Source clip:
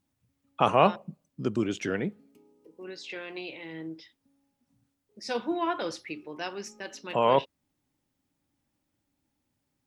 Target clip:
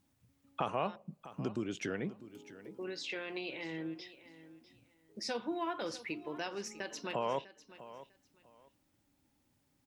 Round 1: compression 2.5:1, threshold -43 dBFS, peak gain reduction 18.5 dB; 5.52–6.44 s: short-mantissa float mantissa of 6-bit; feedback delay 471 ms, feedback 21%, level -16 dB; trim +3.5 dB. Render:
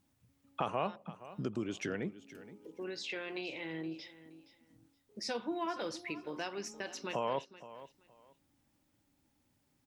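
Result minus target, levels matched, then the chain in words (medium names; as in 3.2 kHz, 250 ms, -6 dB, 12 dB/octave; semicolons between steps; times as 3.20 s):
echo 178 ms early
compression 2.5:1, threshold -43 dBFS, peak gain reduction 18.5 dB; 5.52–6.44 s: short-mantissa float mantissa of 6-bit; feedback delay 649 ms, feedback 21%, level -16 dB; trim +3.5 dB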